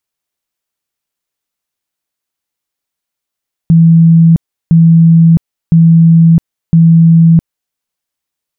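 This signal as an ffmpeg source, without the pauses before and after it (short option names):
-f lavfi -i "aevalsrc='0.841*sin(2*PI*165*mod(t,1.01))*lt(mod(t,1.01),109/165)':d=4.04:s=44100"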